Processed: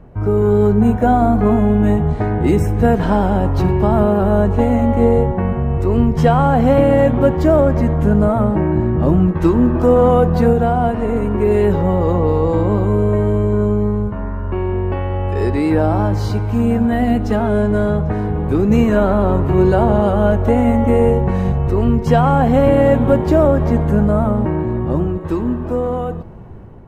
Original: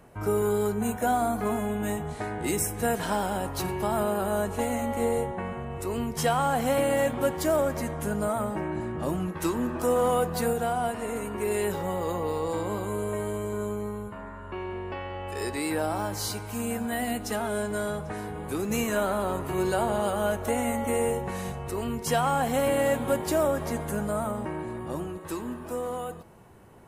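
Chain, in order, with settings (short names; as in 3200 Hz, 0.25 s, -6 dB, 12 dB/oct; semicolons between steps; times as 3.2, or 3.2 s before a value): tilt -3.5 dB/oct; AGC gain up to 5.5 dB; bell 10000 Hz -11.5 dB 1 oct; gain +3.5 dB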